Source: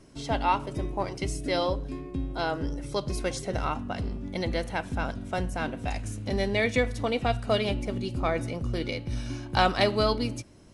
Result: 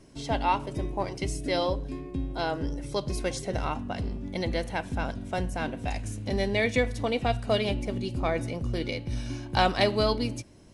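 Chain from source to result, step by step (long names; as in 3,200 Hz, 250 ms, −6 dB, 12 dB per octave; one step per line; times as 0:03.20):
parametric band 1,300 Hz −5 dB 0.29 octaves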